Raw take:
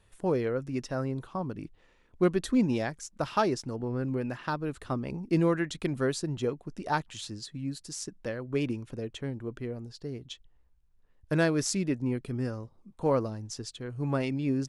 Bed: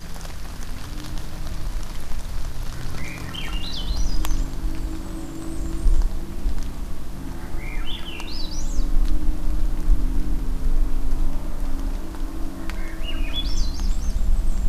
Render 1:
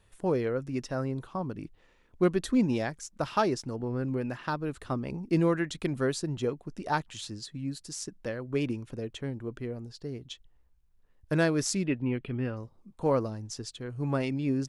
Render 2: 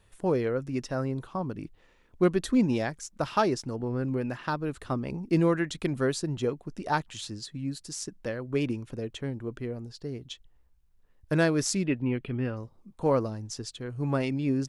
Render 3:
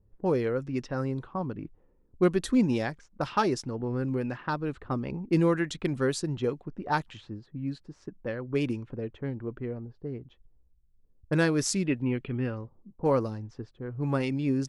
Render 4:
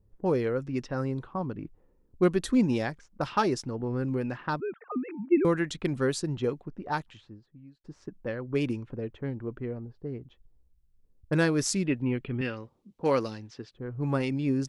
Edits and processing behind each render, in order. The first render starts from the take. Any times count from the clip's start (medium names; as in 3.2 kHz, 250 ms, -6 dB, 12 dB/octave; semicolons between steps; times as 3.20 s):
11.86–12.57 s: resonant high shelf 4.3 kHz -14 dB, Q 3
trim +1.5 dB
level-controlled noise filter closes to 350 Hz, open at -24.5 dBFS; band-stop 650 Hz, Q 12
4.60–5.45 s: formants replaced by sine waves; 6.54–7.84 s: fade out; 12.41–13.74 s: frequency weighting D